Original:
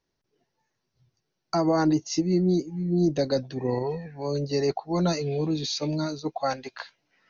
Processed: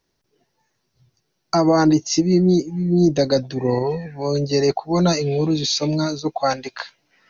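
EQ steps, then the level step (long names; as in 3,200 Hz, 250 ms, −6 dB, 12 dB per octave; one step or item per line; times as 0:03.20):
high-shelf EQ 5,500 Hz +4.5 dB
+7.0 dB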